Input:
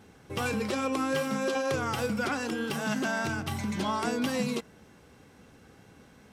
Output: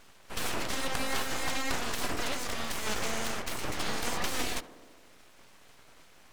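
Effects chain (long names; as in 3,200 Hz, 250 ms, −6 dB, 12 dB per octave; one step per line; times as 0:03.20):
ceiling on every frequency bin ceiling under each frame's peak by 14 dB
full-wave rectification
tape delay 73 ms, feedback 86%, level −12.5 dB, low-pass 1,100 Hz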